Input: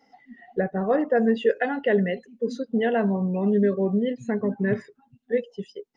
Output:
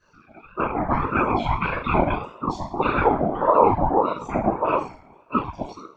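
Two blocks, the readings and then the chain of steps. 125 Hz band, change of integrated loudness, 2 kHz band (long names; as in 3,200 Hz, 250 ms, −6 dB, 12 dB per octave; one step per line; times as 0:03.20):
+1.5 dB, +2.0 dB, +2.0 dB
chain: coupled-rooms reverb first 0.46 s, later 1.8 s, from −24 dB, DRR −8.5 dB
random phases in short frames
ring modulator whose carrier an LFO sweeps 620 Hz, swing 30%, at 1.7 Hz
level −5 dB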